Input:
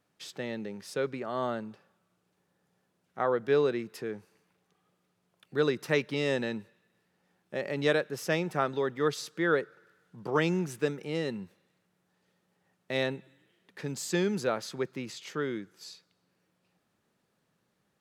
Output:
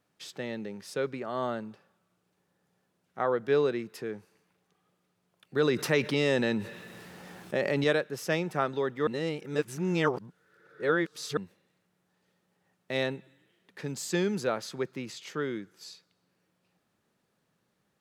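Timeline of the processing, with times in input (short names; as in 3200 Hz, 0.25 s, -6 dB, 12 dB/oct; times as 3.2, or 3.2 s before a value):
5.56–7.84 fast leveller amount 50%
9.07–11.37 reverse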